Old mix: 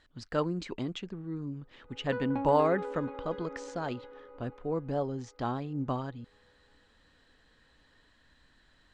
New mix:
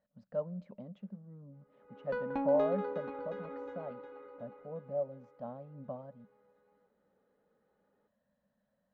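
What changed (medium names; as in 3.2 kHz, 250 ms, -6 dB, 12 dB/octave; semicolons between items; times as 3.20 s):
speech: add two resonant band-passes 340 Hz, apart 1.5 oct; reverb: on, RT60 1.0 s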